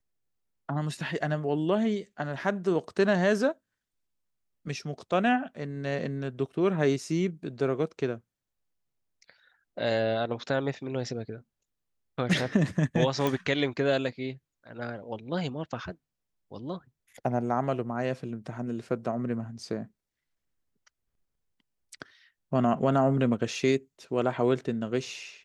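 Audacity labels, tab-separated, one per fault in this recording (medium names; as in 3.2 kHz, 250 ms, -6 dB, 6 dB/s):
13.270000	13.270000	pop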